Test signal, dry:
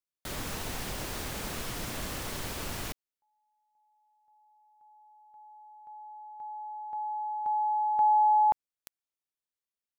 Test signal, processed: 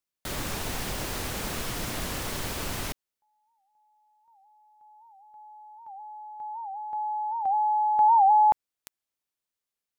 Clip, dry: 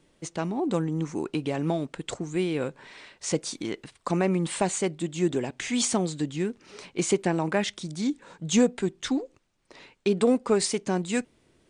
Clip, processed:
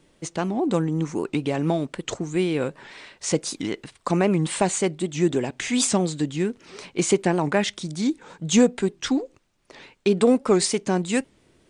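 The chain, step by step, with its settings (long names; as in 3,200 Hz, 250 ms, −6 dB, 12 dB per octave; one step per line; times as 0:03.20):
wow of a warped record 78 rpm, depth 160 cents
level +4 dB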